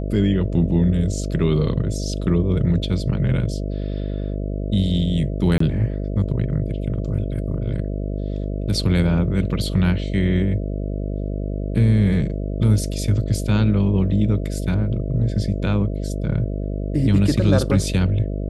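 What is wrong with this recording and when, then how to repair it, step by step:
buzz 50 Hz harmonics 13 -25 dBFS
5.58–5.60 s: dropout 24 ms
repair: de-hum 50 Hz, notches 13; interpolate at 5.58 s, 24 ms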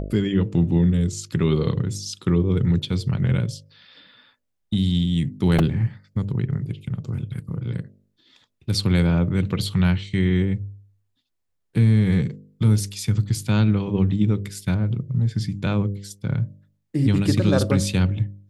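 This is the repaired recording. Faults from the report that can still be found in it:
nothing left

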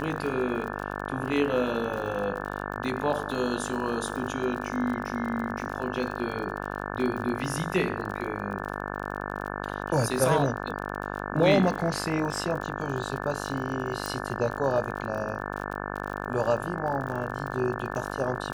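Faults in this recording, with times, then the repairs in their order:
buzz 50 Hz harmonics 35 -34 dBFS
crackle 42 per s -34 dBFS
14.06 s: pop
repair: de-click; de-hum 50 Hz, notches 35

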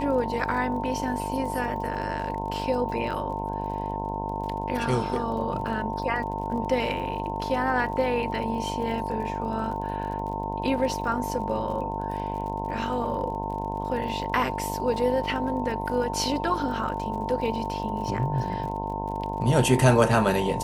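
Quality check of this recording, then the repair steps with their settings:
buzz 50 Hz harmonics 21 -33 dBFS
crackle 42 per s -36 dBFS
whine 900 Hz -32 dBFS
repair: de-click; de-hum 50 Hz, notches 21; band-stop 900 Hz, Q 30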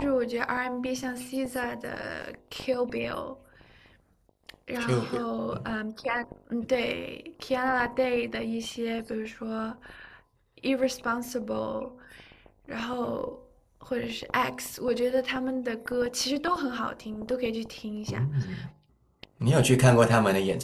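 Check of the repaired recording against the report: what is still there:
nothing left

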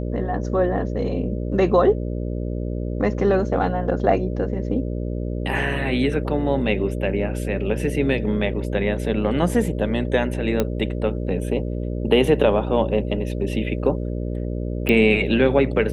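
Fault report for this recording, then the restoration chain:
buzz 60 Hz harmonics 10 -26 dBFS
10.60 s: pop -7 dBFS
14.89 s: pop -8 dBFS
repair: de-click; de-hum 60 Hz, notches 10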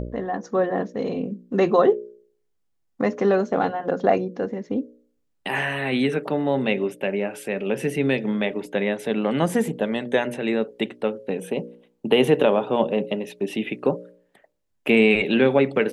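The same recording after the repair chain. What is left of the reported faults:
14.89 s: pop

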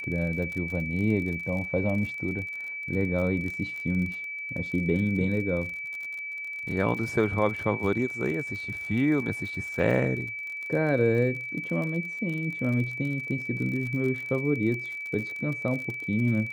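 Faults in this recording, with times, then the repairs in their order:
crackle 43 per s -34 dBFS
whine 2.3 kHz -33 dBFS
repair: de-click; band-stop 2.3 kHz, Q 30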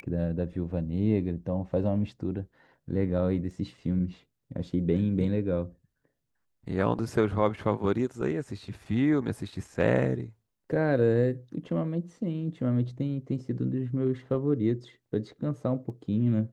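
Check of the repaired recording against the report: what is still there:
nothing left

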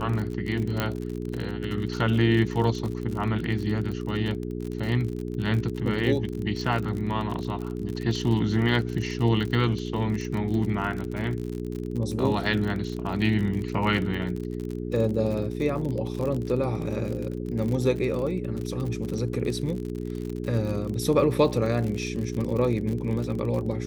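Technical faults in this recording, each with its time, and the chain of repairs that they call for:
crackle 47 per s -30 dBFS
hum 60 Hz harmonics 7 -32 dBFS
0.80 s: pop -11 dBFS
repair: de-click; de-hum 60 Hz, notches 7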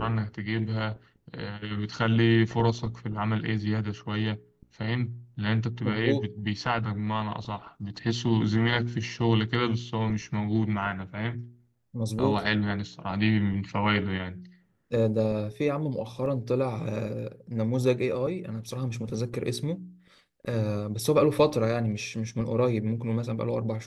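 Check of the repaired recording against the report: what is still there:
0.80 s: pop

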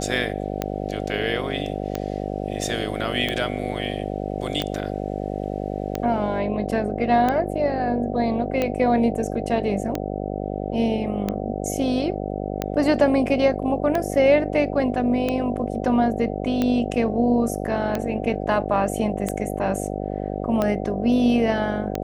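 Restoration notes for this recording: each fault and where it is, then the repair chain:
buzz 50 Hz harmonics 15 -28 dBFS
tick 45 rpm -10 dBFS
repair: de-click; de-hum 50 Hz, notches 15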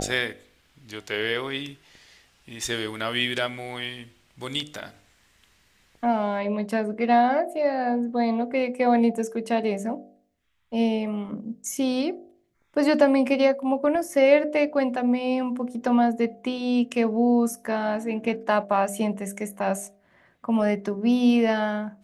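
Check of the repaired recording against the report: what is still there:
nothing left

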